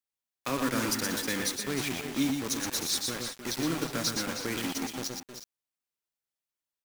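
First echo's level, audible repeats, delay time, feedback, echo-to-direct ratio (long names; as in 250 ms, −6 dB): −7.5 dB, 3, 115 ms, repeats not evenly spaced, −3.0 dB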